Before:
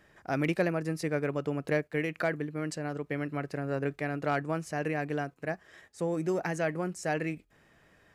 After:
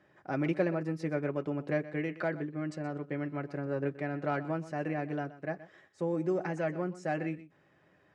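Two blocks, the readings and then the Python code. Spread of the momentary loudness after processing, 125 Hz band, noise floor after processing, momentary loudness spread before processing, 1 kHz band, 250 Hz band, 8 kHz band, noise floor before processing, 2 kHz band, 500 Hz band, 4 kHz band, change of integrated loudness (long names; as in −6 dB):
6 LU, −2.0 dB, −67 dBFS, 6 LU, −3.0 dB, −0.5 dB, below −10 dB, −64 dBFS, −5.0 dB, −2.0 dB, −8.0 dB, −2.0 dB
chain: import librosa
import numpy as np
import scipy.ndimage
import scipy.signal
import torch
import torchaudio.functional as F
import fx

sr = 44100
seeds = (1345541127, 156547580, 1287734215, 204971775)

y = fx.bandpass_edges(x, sr, low_hz=130.0, high_hz=6500.0)
y = fx.high_shelf(y, sr, hz=2100.0, db=-9.0)
y = fx.notch_comb(y, sr, f0_hz=230.0)
y = y + 10.0 ** (-16.0 / 20.0) * np.pad(y, (int(124 * sr / 1000.0), 0))[:len(y)]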